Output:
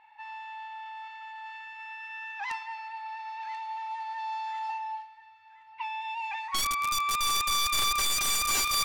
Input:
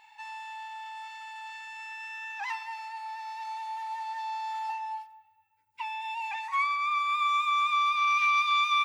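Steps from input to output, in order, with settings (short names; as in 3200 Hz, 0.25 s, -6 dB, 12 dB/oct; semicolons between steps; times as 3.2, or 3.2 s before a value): wrapped overs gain 22.5 dB; thin delay 1.035 s, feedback 45%, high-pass 1400 Hz, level -12 dB; low-pass opened by the level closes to 1900 Hz, open at -25.5 dBFS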